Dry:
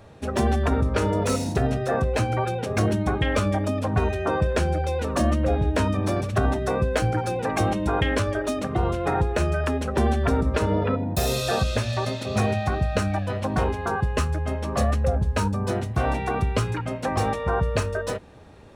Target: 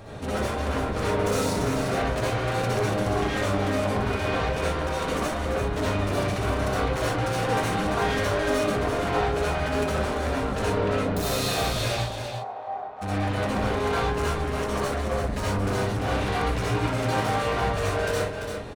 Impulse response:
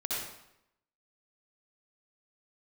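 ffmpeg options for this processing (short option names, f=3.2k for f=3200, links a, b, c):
-filter_complex "[0:a]alimiter=limit=-19dB:level=0:latency=1:release=39,acontrast=80,asoftclip=type=tanh:threshold=-27dB,asplit=3[a][b][c];[a]afade=t=out:st=11.96:d=0.02[d];[b]bandpass=f=770:t=q:w=4.7:csg=0,afade=t=in:st=11.96:d=0.02,afade=t=out:st=13.01:d=0.02[e];[c]afade=t=in:st=13.01:d=0.02[f];[d][e][f]amix=inputs=3:normalize=0,aecho=1:1:341:0.447[g];[1:a]atrim=start_sample=2205,afade=t=out:st=0.18:d=0.01,atrim=end_sample=8379[h];[g][h]afir=irnorm=-1:irlink=0"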